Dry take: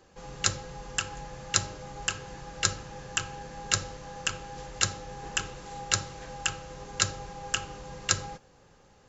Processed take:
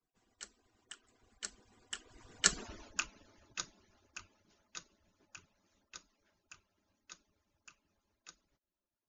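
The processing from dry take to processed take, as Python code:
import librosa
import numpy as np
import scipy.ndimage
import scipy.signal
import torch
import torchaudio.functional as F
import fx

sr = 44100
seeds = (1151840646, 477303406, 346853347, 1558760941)

y = fx.hpss_only(x, sr, part='percussive')
y = fx.doppler_pass(y, sr, speed_mps=25, closest_m=2.8, pass_at_s=2.63)
y = y * 10.0 ** (3.5 / 20.0)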